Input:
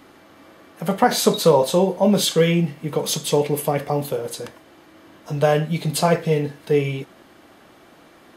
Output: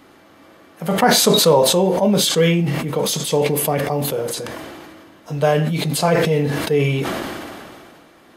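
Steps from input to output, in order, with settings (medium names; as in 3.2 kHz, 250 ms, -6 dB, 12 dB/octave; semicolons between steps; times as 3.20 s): decay stretcher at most 26 dB/s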